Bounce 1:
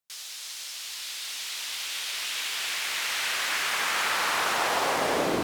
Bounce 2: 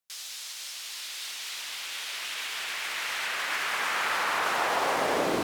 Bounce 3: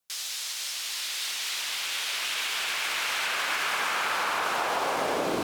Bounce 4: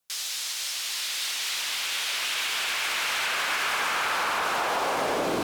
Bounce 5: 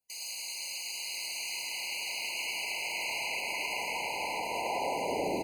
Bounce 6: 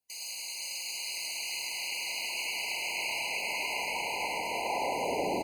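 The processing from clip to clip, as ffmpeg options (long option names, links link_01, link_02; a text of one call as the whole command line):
ffmpeg -i in.wav -filter_complex "[0:a]lowshelf=frequency=200:gain=-4.5,acrossover=split=2600[link_01][link_02];[link_02]alimiter=level_in=5.5dB:limit=-24dB:level=0:latency=1:release=214,volume=-5.5dB[link_03];[link_01][link_03]amix=inputs=2:normalize=0" out.wav
ffmpeg -i in.wav -af "adynamicequalizer=threshold=0.00398:dfrequency=1900:dqfactor=7.7:tfrequency=1900:tqfactor=7.7:attack=5:release=100:ratio=0.375:range=3:mode=cutabove:tftype=bell,acompressor=threshold=-30dB:ratio=6,volume=5.5dB" out.wav
ffmpeg -i in.wav -af "asoftclip=type=tanh:threshold=-20.5dB,volume=2.5dB" out.wav
ffmpeg -i in.wav -af "aecho=1:1:34.99|105:0.316|0.794,afftfilt=real='re*eq(mod(floor(b*sr/1024/1000),2),0)':imag='im*eq(mod(floor(b*sr/1024/1000),2),0)':win_size=1024:overlap=0.75,volume=-6.5dB" out.wav
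ffmpeg -i in.wav -af "aecho=1:1:495:0.531" out.wav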